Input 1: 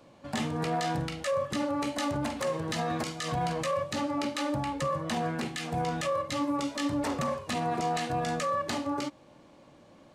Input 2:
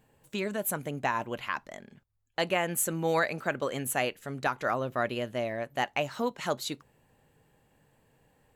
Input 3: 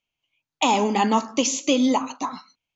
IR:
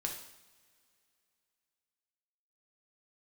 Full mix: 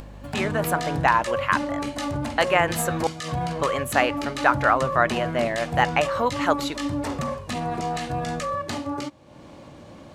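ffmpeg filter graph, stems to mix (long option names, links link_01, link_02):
-filter_complex "[0:a]equalizer=frequency=80:width=0.92:gain=8,volume=1.5dB[link_01];[1:a]equalizer=frequency=1200:width=0.44:gain=13.5,aeval=exprs='val(0)+0.00631*(sin(2*PI*50*n/s)+sin(2*PI*2*50*n/s)/2+sin(2*PI*3*50*n/s)/3+sin(2*PI*4*50*n/s)/4+sin(2*PI*5*50*n/s)/5)':channel_layout=same,volume=-1.5dB,asplit=3[link_02][link_03][link_04];[link_02]atrim=end=3.07,asetpts=PTS-STARTPTS,afade=type=out:start_time=3.066:duration=0.004:curve=hsin[link_05];[link_03]atrim=start=3.07:end=3.58,asetpts=PTS-STARTPTS,volume=0[link_06];[link_04]atrim=start=3.58,asetpts=PTS-STARTPTS,afade=type=in:duration=0.004:curve=hsin[link_07];[link_05][link_06][link_07]concat=n=3:v=0:a=1[link_08];[link_01][link_08]amix=inputs=2:normalize=0,acompressor=mode=upward:threshold=-34dB:ratio=2.5"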